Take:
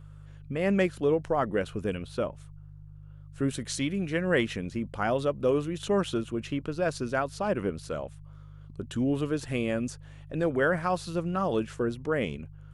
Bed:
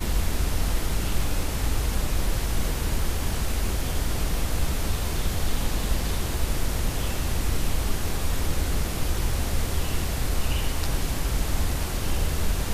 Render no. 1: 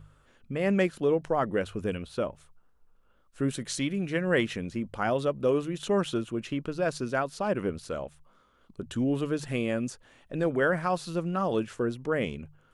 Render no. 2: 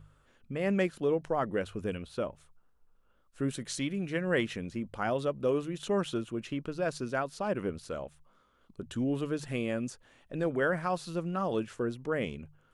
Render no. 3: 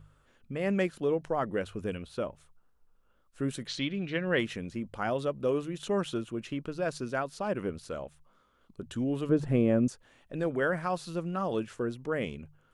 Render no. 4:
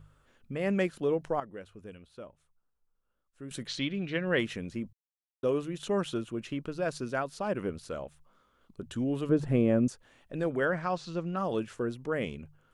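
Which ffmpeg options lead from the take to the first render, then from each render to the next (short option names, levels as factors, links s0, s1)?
-af "bandreject=f=50:t=h:w=4,bandreject=f=100:t=h:w=4,bandreject=f=150:t=h:w=4"
-af "volume=0.668"
-filter_complex "[0:a]asettb=1/sr,asplit=3[s0][s1][s2];[s0]atrim=end=3.674[s3];[s1]atrim=start=3.67:end=4.39,asetpts=PTS-STARTPTS,afade=t=in:d=0.004:c=qsin,afade=t=out:st=0.716:d=0.004:c=qsin,lowpass=f=3800:t=q:w=2[s4];[s2]atrim=start=4.386[s5];[s3][s4]acrossfade=d=0.004:c1=hsin:c2=qsin[s6];[s6][s5]acrossfade=d=0.004:c1=qsin:c2=hsin,asettb=1/sr,asplit=3[s7][s8][s9];[s7]atrim=end=9.294[s10];[s8]atrim=start=9.29:end=9.88,asetpts=PTS-STARTPTS,afade=t=in:d=0.004:c=qsin,afade=t=out:st=0.586:d=0.004:c=qsin,tiltshelf=f=1400:g=9.5[s11];[s9]atrim=start=9.876[s12];[s10][s11]acrossfade=d=0.004:c1=hsin:c2=qsin[s13];[s13][s12]acrossfade=d=0.004:c1=qsin:c2=hsin"
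-filter_complex "[0:a]asettb=1/sr,asplit=3[s0][s1][s2];[s0]atrim=end=10.654[s3];[s1]atrim=start=10.65:end=11.37,asetpts=PTS-STARTPTS,afade=t=in:d=0.004:c=qsin,afade=t=out:st=0.716:d=0.004:c=qsin,lowpass=f=6700:w=0.5412,lowpass=f=6700:w=1.3066[s4];[s2]atrim=start=11.366[s5];[s3][s4]acrossfade=d=0.004:c1=hsin:c2=qsin[s6];[s6][s5]acrossfade=d=0.004:c1=qsin:c2=hsin,asplit=5[s7][s8][s9][s10][s11];[s7]atrim=end=1.402[s12];[s8]atrim=start=1.398:end=3.512,asetpts=PTS-STARTPTS,volume=0.251[s13];[s9]atrim=start=3.508:end=4.93,asetpts=PTS-STARTPTS,afade=t=out:st=1.418:d=0.004:c=hsin[s14];[s10]atrim=start=4.93:end=5.43,asetpts=PTS-STARTPTS,volume=0[s15];[s11]atrim=start=5.43,asetpts=PTS-STARTPTS,afade=t=in:d=0.004:c=hsin[s16];[s12][s13]acrossfade=d=0.004:c1=hsin:c2=hsin[s17];[s14][s15][s16]concat=n=3:v=0:a=1[s18];[s17][s18]acrossfade=d=0.004:c1=hsin:c2=hsin"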